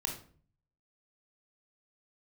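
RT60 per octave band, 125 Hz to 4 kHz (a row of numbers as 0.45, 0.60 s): 0.85, 0.65, 0.50, 0.40, 0.40, 0.30 s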